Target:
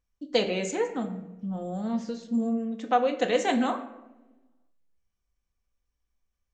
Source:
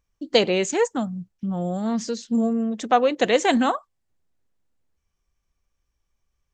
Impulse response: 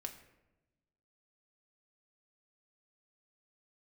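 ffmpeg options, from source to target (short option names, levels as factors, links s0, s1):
-filter_complex "[0:a]asettb=1/sr,asplit=3[s0][s1][s2];[s0]atrim=end=0.744[s3];[s1]atrim=start=0.74:end=2.89,asetpts=PTS-STARTPTS,afade=t=in:d=0.004:c=qsin,afade=t=out:st=2.146:d=0.004:c=qsin,acrossover=split=3600[s4][s5];[s5]acompressor=threshold=0.00447:ratio=4:attack=1:release=60[s6];[s4][s6]amix=inputs=2:normalize=0[s7];[s2]atrim=start=2.886[s8];[s3][s7]acrossfade=d=0.004:c1=hsin:c2=qsin[s9];[s9][s8]acrossfade=d=0.004:c1=qsin:c2=hsin[s10];[1:a]atrim=start_sample=2205,asetrate=43218,aresample=44100[s11];[s10][s11]afir=irnorm=-1:irlink=0,volume=0.631"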